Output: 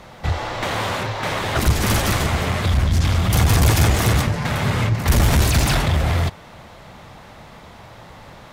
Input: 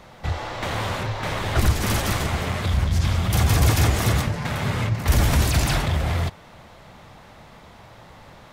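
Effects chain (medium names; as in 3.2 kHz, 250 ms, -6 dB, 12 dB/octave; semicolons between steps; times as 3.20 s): one-sided clip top -18.5 dBFS; 0.63–1.67 s: bass shelf 99 Hz -10.5 dB; trim +4.5 dB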